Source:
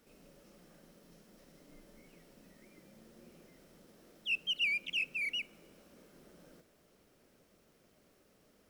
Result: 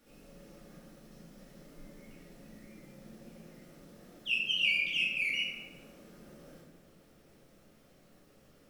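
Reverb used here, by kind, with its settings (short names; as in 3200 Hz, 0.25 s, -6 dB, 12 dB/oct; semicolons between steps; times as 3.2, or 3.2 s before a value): shoebox room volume 420 m³, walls mixed, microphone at 2.3 m; gain -1.5 dB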